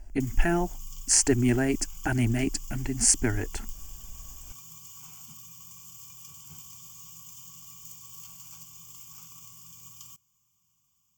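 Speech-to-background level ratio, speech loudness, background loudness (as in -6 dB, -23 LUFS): 18.5 dB, -25.5 LUFS, -44.0 LUFS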